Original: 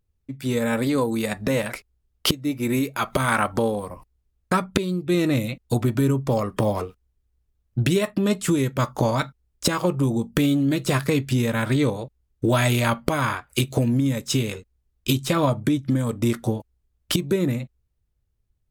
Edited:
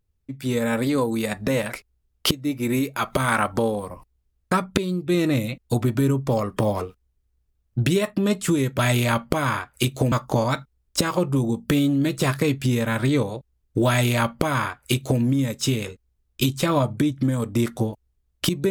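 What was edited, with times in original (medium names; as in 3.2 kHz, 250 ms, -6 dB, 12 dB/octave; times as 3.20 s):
12.55–13.88 s: copy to 8.79 s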